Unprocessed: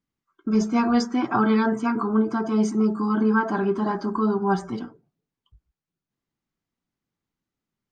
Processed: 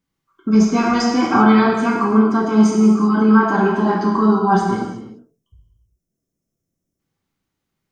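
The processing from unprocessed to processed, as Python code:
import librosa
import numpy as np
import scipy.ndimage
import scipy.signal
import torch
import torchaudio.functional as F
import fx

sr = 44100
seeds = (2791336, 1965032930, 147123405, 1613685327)

y = fx.spec_box(x, sr, start_s=4.77, length_s=2.22, low_hz=690.0, high_hz=5100.0, gain_db=-14)
y = fx.rev_gated(y, sr, seeds[0], gate_ms=410, shape='falling', drr_db=-1.5)
y = y * 10.0 ** (5.0 / 20.0)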